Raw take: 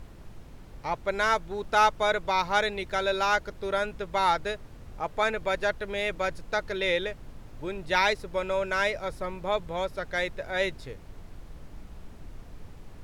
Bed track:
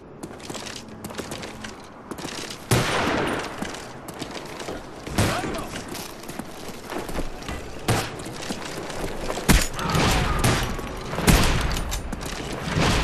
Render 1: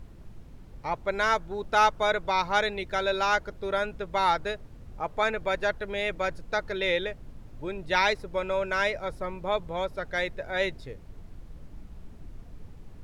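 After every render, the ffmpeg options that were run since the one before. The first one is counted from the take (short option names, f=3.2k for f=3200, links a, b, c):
-af "afftdn=nr=6:nf=-47"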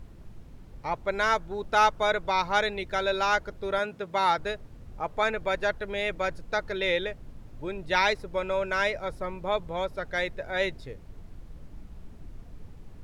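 -filter_complex "[0:a]asettb=1/sr,asplit=3[a][b][c];[a]atrim=end=3.794[d];[b]atrim=start=3.79:end=4.38,asetpts=PTS-STARTPTS,afade=t=in:d=0.004:c=qsin,afade=t=out:st=0.586:d=0.004:c=qsin,highpass=f=110:w=0.5412,highpass=f=110:w=1.3066[e];[c]atrim=start=4.376[f];[d][e]acrossfade=d=0.004:c1=hsin:c2=qsin[g];[g][f]acrossfade=d=0.004:c1=qsin:c2=hsin"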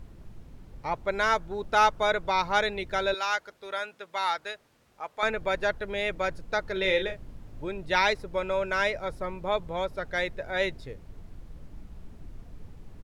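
-filter_complex "[0:a]asettb=1/sr,asplit=3[a][b][c];[a]atrim=end=3.144[d];[b]atrim=start=3.14:end=5.23,asetpts=PTS-STARTPTS,afade=t=in:d=0.004:c=qsin,afade=t=out:st=2.086:d=0.004:c=qsin,highpass=f=1.3k:p=1[e];[c]atrim=start=5.226[f];[d][e]acrossfade=d=0.004:c1=hsin:c2=qsin[g];[g][f]acrossfade=d=0.004:c1=qsin:c2=hsin,asplit=3[h][i][j];[h]afade=t=out:st=6.75:d=0.02[k];[i]asplit=2[l][m];[m]adelay=37,volume=-7dB[n];[l][n]amix=inputs=2:normalize=0,afade=t=in:st=6.75:d=0.02,afade=t=out:st=7.63:d=0.02[o];[j]afade=t=in:st=7.63:d=0.02[p];[k][o][p]amix=inputs=3:normalize=0"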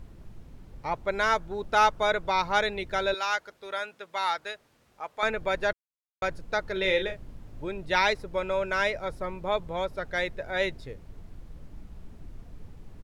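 -filter_complex "[0:a]asplit=3[a][b][c];[a]atrim=end=5.73,asetpts=PTS-STARTPTS,afade=t=out:st=5.726:d=0.004:c=hsin[d];[b]atrim=start=5.73:end=6.22,asetpts=PTS-STARTPTS,volume=0[e];[c]atrim=start=6.22,asetpts=PTS-STARTPTS,afade=t=in:d=0.004:c=hsin[f];[d][e][f]concat=n=3:v=0:a=1"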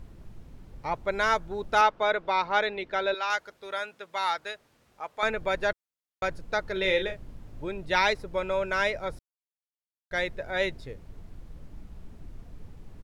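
-filter_complex "[0:a]asettb=1/sr,asplit=3[a][b][c];[a]atrim=end=1.814[d];[b]atrim=start=1.81:end=3.3,asetpts=PTS-STARTPTS,afade=t=in:d=0.004:c=qsin,afade=t=out:st=1.486:d=0.004:c=qsin,acrossover=split=200 4600:gain=0.178 1 0.178[e][f][g];[e][f][g]amix=inputs=3:normalize=0[h];[c]atrim=start=3.296[i];[d][h]acrossfade=d=0.004:c1=hsin:c2=qsin[j];[j][i]acrossfade=d=0.004:c1=qsin:c2=hsin,asplit=3[k][l][m];[k]atrim=end=9.19,asetpts=PTS-STARTPTS,afade=t=out:st=9.186:d=0.004:c=hsin[n];[l]atrim=start=9.19:end=10.11,asetpts=PTS-STARTPTS,volume=0[o];[m]atrim=start=10.11,asetpts=PTS-STARTPTS,afade=t=in:d=0.004:c=hsin[p];[n][o][p]concat=n=3:v=0:a=1"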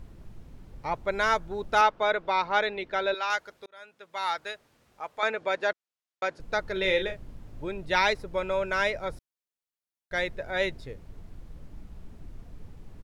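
-filter_complex "[0:a]asettb=1/sr,asplit=3[a][b][c];[a]atrim=end=5.194[d];[b]atrim=start=5.19:end=6.4,asetpts=PTS-STARTPTS,afade=t=in:d=0.004:c=qsin,afade=t=out:st=1.206:d=0.004:c=qsin,highpass=290,lowpass=7.1k[e];[c]atrim=start=6.396[f];[d][e]acrossfade=d=0.004:c1=hsin:c2=qsin[g];[g][f]acrossfade=d=0.004:c1=qsin:c2=hsin,asplit=2[h][i];[h]atrim=end=3.66,asetpts=PTS-STARTPTS,afade=t=out:st=3.656:d=0.004:c=hsin[j];[i]atrim=start=3.66,asetpts=PTS-STARTPTS,afade=t=in:d=0.74[k];[j][k]concat=n=2:v=0:a=1"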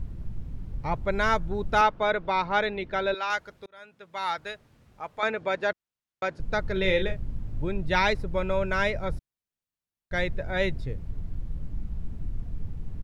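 -af "bass=f=250:g=12,treble=f=4k:g=-3"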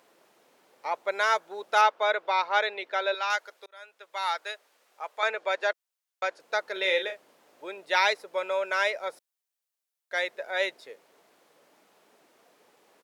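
-af "highpass=f=480:w=0.5412,highpass=f=480:w=1.3066,highshelf=f=4.6k:g=7"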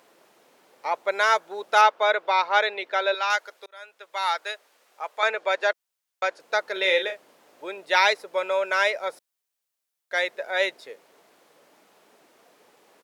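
-af "volume=4dB"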